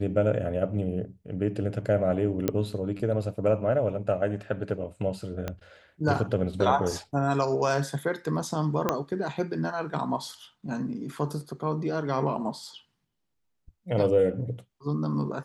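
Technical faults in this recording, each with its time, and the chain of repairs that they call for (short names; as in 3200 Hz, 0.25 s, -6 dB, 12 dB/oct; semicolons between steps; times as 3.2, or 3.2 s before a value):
2.48 pop -11 dBFS
5.48 pop -17 dBFS
8.89 pop -10 dBFS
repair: de-click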